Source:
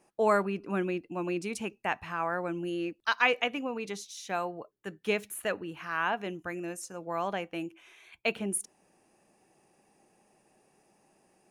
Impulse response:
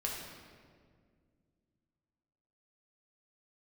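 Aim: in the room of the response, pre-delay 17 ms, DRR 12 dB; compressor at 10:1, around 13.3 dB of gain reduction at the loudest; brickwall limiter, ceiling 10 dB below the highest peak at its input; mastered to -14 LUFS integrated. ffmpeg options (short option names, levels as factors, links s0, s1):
-filter_complex "[0:a]acompressor=threshold=0.0224:ratio=10,alimiter=level_in=1.88:limit=0.0631:level=0:latency=1,volume=0.531,asplit=2[s0][s1];[1:a]atrim=start_sample=2205,adelay=17[s2];[s1][s2]afir=irnorm=-1:irlink=0,volume=0.178[s3];[s0][s3]amix=inputs=2:normalize=0,volume=20"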